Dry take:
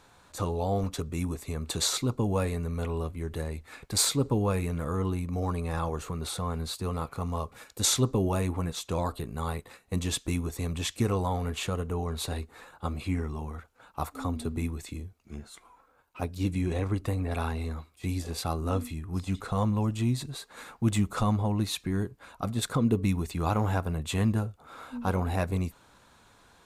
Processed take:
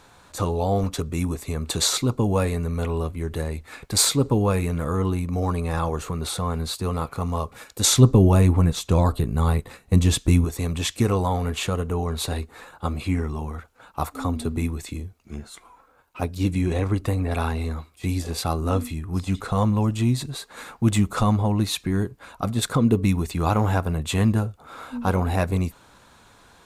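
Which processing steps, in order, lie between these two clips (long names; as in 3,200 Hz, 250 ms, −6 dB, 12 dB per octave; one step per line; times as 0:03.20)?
0:07.97–0:10.45: low-shelf EQ 240 Hz +9.5 dB
level +6 dB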